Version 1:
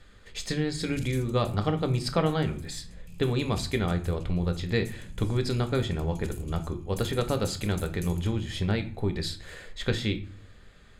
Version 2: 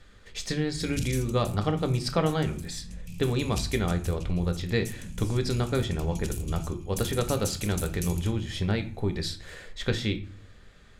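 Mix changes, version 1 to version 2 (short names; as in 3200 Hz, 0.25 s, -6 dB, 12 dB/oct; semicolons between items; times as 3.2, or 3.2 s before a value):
background +7.5 dB; master: remove notch 5700 Hz, Q 8.7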